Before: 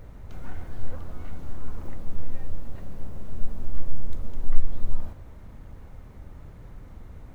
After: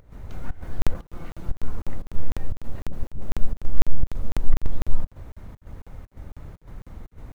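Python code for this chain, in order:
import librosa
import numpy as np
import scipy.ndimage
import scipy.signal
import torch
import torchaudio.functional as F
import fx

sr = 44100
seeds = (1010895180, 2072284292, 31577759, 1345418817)

y = fx.lower_of_two(x, sr, delay_ms=5.9, at=(0.94, 1.49))
y = fx.volume_shaper(y, sr, bpm=119, per_beat=1, depth_db=-17, release_ms=117.0, shape='slow start')
y = fx.dispersion(y, sr, late='highs', ms=78.0, hz=390.0, at=(2.85, 3.27))
y = fx.buffer_crackle(y, sr, first_s=0.82, period_s=0.25, block=2048, kind='zero')
y = F.gain(torch.from_numpy(y), 4.0).numpy()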